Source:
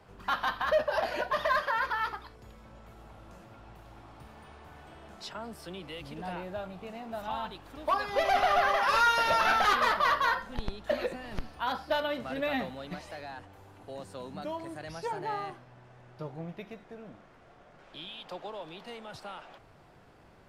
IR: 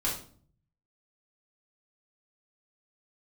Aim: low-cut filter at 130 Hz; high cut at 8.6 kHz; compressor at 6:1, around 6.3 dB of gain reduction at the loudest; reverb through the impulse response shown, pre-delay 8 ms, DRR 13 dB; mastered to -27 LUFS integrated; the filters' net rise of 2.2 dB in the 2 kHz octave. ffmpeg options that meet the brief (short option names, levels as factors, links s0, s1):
-filter_complex "[0:a]highpass=130,lowpass=8600,equalizer=f=2000:t=o:g=3,acompressor=threshold=0.0447:ratio=6,asplit=2[s0][s1];[1:a]atrim=start_sample=2205,adelay=8[s2];[s1][s2]afir=irnorm=-1:irlink=0,volume=0.106[s3];[s0][s3]amix=inputs=2:normalize=0,volume=2.24"